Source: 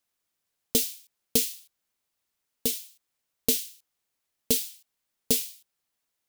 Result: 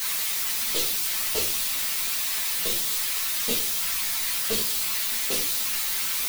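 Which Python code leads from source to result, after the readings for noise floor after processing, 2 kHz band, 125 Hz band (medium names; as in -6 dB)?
-27 dBFS, +15.5 dB, -0.5 dB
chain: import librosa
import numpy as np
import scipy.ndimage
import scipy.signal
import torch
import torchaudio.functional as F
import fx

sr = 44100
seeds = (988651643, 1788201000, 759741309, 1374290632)

y = x + 0.5 * 10.0 ** (-19.5 / 20.0) * np.diff(np.sign(x), prepend=np.sign(x[:1]))
y = fx.graphic_eq(y, sr, hz=(500, 1000, 2000, 4000), db=(7, 11, 11, 7))
y = fx.whisperise(y, sr, seeds[0])
y = 10.0 ** (-20.0 / 20.0) * np.tanh(y / 10.0 ** (-20.0 / 20.0))
y = fx.room_shoebox(y, sr, seeds[1], volume_m3=220.0, walls='furnished', distance_m=1.5)
y = fx.ensemble(y, sr)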